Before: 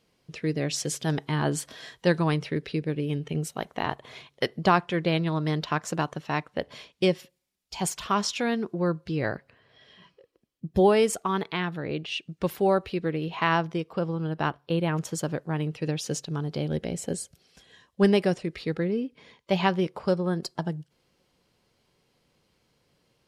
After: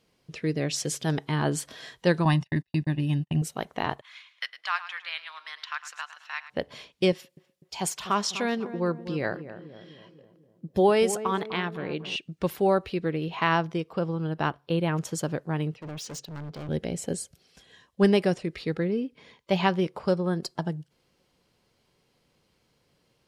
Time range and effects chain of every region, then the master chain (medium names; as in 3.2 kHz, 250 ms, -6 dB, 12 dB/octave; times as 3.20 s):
2.25–3.42 s: gate -35 dBFS, range -46 dB + comb 1.1 ms, depth 96%
4.01–6.50 s: high-pass 1.3 kHz 24 dB/octave + treble shelf 5.9 kHz -10.5 dB + feedback delay 107 ms, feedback 39%, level -13.5 dB
7.12–12.16 s: high-pass 190 Hz 6 dB/octave + filtered feedback delay 249 ms, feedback 59%, low-pass 900 Hz, level -11 dB
15.74–16.69 s: low-pass 7.4 kHz + overload inside the chain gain 35.5 dB + three bands expanded up and down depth 70%
whole clip: none